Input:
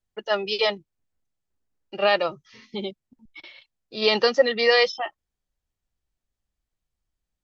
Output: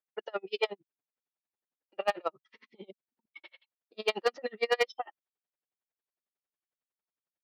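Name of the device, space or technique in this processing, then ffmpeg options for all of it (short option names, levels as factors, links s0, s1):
helicopter radio: -af "highpass=370,lowpass=2600,aeval=exprs='val(0)*pow(10,-40*(0.5-0.5*cos(2*PI*11*n/s))/20)':c=same,asoftclip=type=hard:threshold=0.126"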